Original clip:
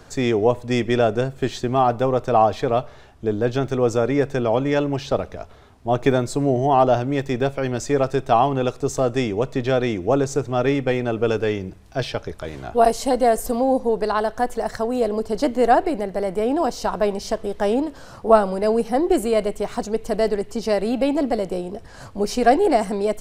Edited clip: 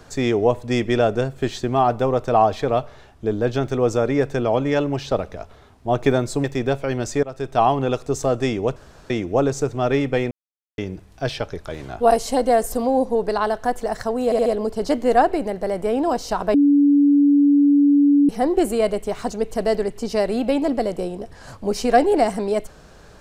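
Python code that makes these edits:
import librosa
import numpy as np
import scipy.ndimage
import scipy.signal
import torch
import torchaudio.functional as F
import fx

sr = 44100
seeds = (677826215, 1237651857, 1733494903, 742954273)

y = fx.edit(x, sr, fx.cut(start_s=6.44, length_s=0.74),
    fx.fade_in_from(start_s=7.97, length_s=0.41, floor_db=-20.0),
    fx.room_tone_fill(start_s=9.5, length_s=0.34),
    fx.silence(start_s=11.05, length_s=0.47),
    fx.stutter(start_s=14.99, slice_s=0.07, count=4),
    fx.bleep(start_s=17.07, length_s=1.75, hz=286.0, db=-11.0), tone=tone)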